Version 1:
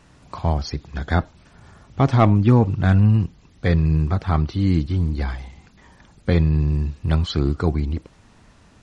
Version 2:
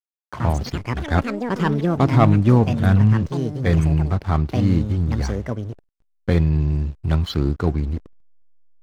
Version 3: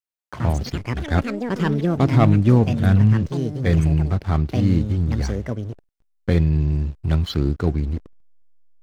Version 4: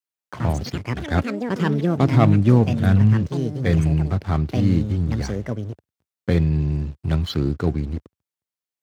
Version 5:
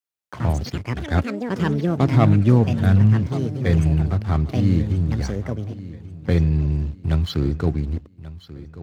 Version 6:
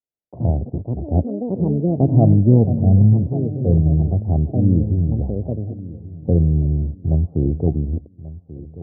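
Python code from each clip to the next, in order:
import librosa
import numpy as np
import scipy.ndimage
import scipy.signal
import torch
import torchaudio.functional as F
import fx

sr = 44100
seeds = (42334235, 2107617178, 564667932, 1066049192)

y1 = fx.backlash(x, sr, play_db=-31.5)
y1 = fx.echo_pitch(y1, sr, ms=89, semitones=6, count=3, db_per_echo=-6.0)
y2 = fx.dynamic_eq(y1, sr, hz=1000.0, q=1.4, threshold_db=-39.0, ratio=4.0, max_db=-5)
y3 = scipy.signal.sosfilt(scipy.signal.butter(4, 79.0, 'highpass', fs=sr, output='sos'), y2)
y4 = fx.peak_eq(y3, sr, hz=71.0, db=4.0, octaves=0.97)
y4 = fx.echo_feedback(y4, sr, ms=1136, feedback_pct=32, wet_db=-17.0)
y4 = F.gain(torch.from_numpy(y4), -1.0).numpy()
y5 = scipy.signal.sosfilt(scipy.signal.butter(8, 730.0, 'lowpass', fs=sr, output='sos'), y4)
y5 = F.gain(torch.from_numpy(y5), 2.5).numpy()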